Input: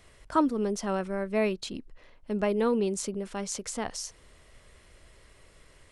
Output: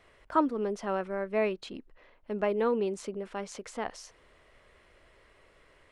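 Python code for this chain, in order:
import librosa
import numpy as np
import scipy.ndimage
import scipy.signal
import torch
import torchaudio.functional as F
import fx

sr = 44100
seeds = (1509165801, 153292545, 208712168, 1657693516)

y = fx.bass_treble(x, sr, bass_db=-9, treble_db=-14)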